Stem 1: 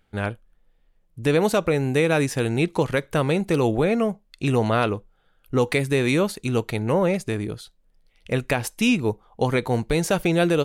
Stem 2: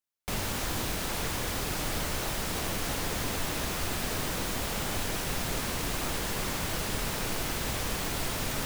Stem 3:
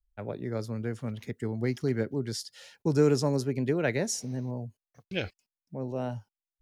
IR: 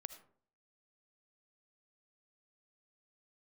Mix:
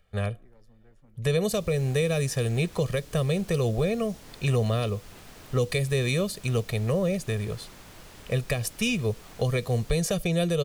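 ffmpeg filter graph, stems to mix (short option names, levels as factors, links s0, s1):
-filter_complex "[0:a]aecho=1:1:1.7:0.94,volume=0.631,asplit=2[s0][s1];[s1]volume=0.141[s2];[1:a]highshelf=f=9400:g=-3.5,adelay=1250,volume=0.158,asplit=2[s3][s4];[s4]volume=0.355[s5];[2:a]aeval=exprs='(tanh(17.8*val(0)+0.7)-tanh(0.7))/17.8':c=same,acompressor=threshold=0.00891:ratio=3,volume=0.168,asplit=2[s6][s7];[s7]volume=0.211[s8];[3:a]atrim=start_sample=2205[s9];[s2][s9]afir=irnorm=-1:irlink=0[s10];[s5][s8]amix=inputs=2:normalize=0,aecho=0:1:628:1[s11];[s0][s3][s6][s10][s11]amix=inputs=5:normalize=0,acrossover=split=420|3000[s12][s13][s14];[s13]acompressor=threshold=0.02:ratio=6[s15];[s12][s15][s14]amix=inputs=3:normalize=0"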